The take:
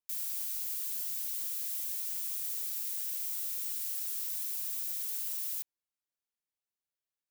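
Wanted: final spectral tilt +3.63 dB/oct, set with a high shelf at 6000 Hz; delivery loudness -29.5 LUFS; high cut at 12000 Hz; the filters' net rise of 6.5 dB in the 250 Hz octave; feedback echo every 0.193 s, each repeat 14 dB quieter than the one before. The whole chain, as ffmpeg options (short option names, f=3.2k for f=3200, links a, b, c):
-af "lowpass=12k,equalizer=f=250:t=o:g=8.5,highshelf=f=6k:g=-5.5,aecho=1:1:193|386:0.2|0.0399,volume=14.5dB"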